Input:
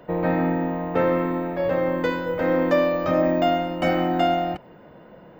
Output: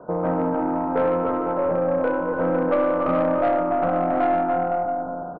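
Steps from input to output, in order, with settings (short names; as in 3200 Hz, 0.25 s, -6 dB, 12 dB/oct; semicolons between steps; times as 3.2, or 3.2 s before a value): tracing distortion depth 0.17 ms; steep low-pass 1500 Hz 96 dB/oct; on a send: bouncing-ball echo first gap 0.29 s, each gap 0.75×, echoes 5; on the sum: soft clip -14.5 dBFS, distortion -17 dB; notches 50/100/150/200/250/300/350 Hz; in parallel at -1.5 dB: compressor, threshold -31 dBFS, peak gain reduction 12 dB; on the sum: low shelf 120 Hz -9 dB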